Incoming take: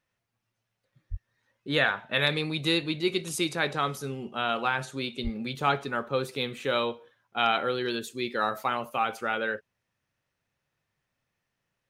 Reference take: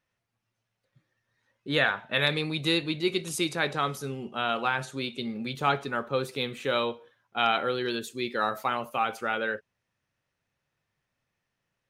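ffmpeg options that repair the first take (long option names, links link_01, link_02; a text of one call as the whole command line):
ffmpeg -i in.wav -filter_complex "[0:a]asplit=3[link_01][link_02][link_03];[link_01]afade=type=out:start_time=1.1:duration=0.02[link_04];[link_02]highpass=frequency=140:width=0.5412,highpass=frequency=140:width=1.3066,afade=type=in:start_time=1.1:duration=0.02,afade=type=out:start_time=1.22:duration=0.02[link_05];[link_03]afade=type=in:start_time=1.22:duration=0.02[link_06];[link_04][link_05][link_06]amix=inputs=3:normalize=0,asplit=3[link_07][link_08][link_09];[link_07]afade=type=out:start_time=5.23:duration=0.02[link_10];[link_08]highpass=frequency=140:width=0.5412,highpass=frequency=140:width=1.3066,afade=type=in:start_time=5.23:duration=0.02,afade=type=out:start_time=5.35:duration=0.02[link_11];[link_09]afade=type=in:start_time=5.35:duration=0.02[link_12];[link_10][link_11][link_12]amix=inputs=3:normalize=0" out.wav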